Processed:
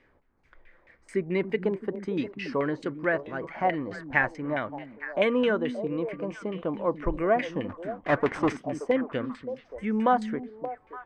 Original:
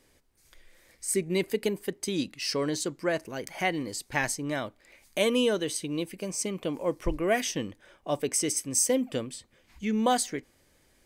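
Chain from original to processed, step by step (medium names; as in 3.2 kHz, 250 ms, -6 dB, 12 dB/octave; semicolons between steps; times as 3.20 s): 7.69–8.57 s: square wave that keeps the level; repeats whose band climbs or falls 288 ms, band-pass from 210 Hz, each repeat 1.4 oct, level -6.5 dB; LFO low-pass saw down 4.6 Hz 820–2300 Hz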